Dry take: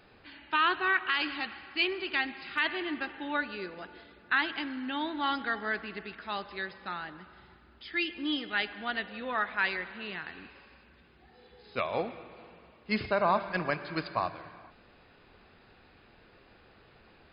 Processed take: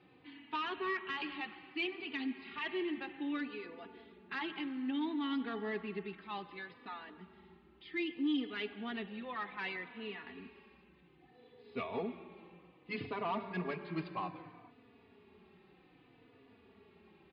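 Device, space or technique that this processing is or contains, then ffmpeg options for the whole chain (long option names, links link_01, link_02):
barber-pole flanger into a guitar amplifier: -filter_complex "[0:a]asplit=2[link_01][link_02];[link_02]adelay=3.4,afreqshift=-0.63[link_03];[link_01][link_03]amix=inputs=2:normalize=1,asoftclip=type=tanh:threshold=-27dB,highpass=90,equalizer=frequency=180:width_type=q:width=4:gain=5,equalizer=frequency=260:width_type=q:width=4:gain=7,equalizer=frequency=410:width_type=q:width=4:gain=7,equalizer=frequency=580:width_type=q:width=4:gain=-8,equalizer=frequency=1500:width_type=q:width=4:gain=-10,lowpass=frequency=3500:width=0.5412,lowpass=frequency=3500:width=1.3066,volume=-2dB"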